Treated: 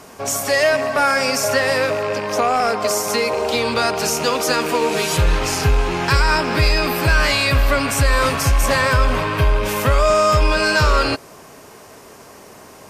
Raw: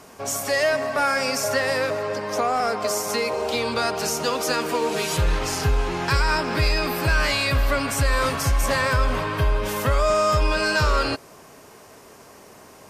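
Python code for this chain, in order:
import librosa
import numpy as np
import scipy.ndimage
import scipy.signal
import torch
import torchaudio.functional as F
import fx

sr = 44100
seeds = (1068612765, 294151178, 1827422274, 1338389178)

y = fx.rattle_buzz(x, sr, strikes_db=-34.0, level_db=-25.0)
y = y * librosa.db_to_amplitude(5.0)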